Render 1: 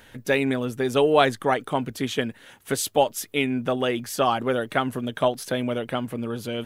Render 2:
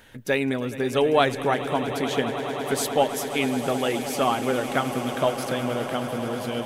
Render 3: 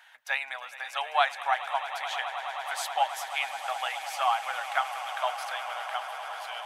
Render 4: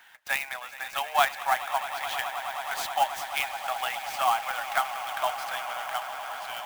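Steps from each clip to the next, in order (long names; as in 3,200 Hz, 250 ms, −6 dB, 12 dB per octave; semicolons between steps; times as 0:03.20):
echo that builds up and dies away 106 ms, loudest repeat 8, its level −16 dB; level −1.5 dB
elliptic high-pass filter 740 Hz, stop band 50 dB; high-shelf EQ 5,600 Hz −10.5 dB
high-pass filter 440 Hz 24 dB per octave; converter with an unsteady clock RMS 0.023 ms; level +1.5 dB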